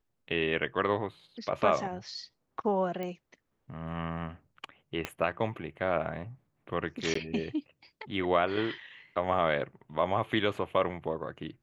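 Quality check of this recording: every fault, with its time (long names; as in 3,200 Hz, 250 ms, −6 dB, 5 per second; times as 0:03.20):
0:03.03: click −24 dBFS
0:05.05: click −17 dBFS
0:07.14–0:07.15: drop-out 14 ms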